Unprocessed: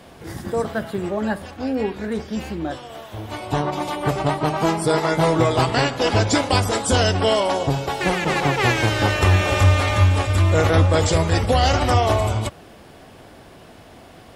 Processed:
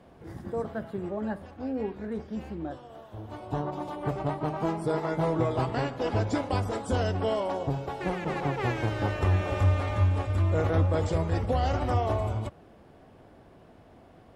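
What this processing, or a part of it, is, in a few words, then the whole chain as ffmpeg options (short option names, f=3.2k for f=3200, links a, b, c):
through cloth: -filter_complex "[0:a]highshelf=f=2k:g=-14,asettb=1/sr,asplit=3[a][b][c];[a]atrim=end=2.694[d];[b]atrim=start=2.69:end=3.99,asetpts=PTS-STARTPTS,afade=t=in:d=0.004:c=qsin,afade=t=out:st=1.296:d=0.004:c=qsin,equalizer=f=2.2k:w=3.1:g=-5.5[e];[c]atrim=start=3.986[f];[d][e]acrossfade=d=0.004:c1=hsin:c2=qsin[g];[g][f]acrossfade=d=0.004:c1=qsin:c2=hsin,volume=-8dB"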